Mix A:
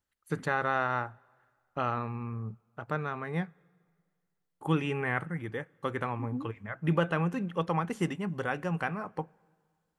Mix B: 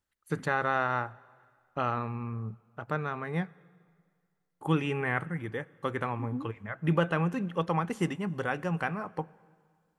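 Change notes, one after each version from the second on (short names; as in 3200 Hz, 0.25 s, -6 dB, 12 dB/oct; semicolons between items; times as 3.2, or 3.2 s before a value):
first voice: send +7.0 dB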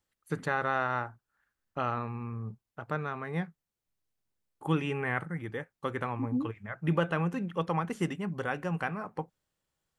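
second voice +8.0 dB; reverb: off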